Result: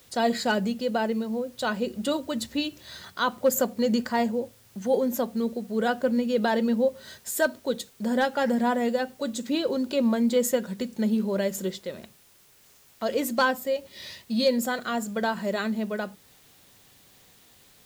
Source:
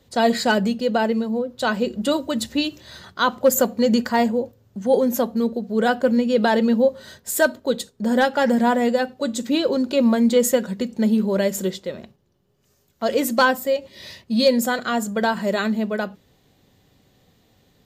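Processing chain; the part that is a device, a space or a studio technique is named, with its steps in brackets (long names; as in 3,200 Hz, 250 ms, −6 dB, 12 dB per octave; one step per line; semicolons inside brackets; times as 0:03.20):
noise-reduction cassette on a plain deck (one half of a high-frequency compander encoder only; tape wow and flutter 17 cents; white noise bed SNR 31 dB)
level −6 dB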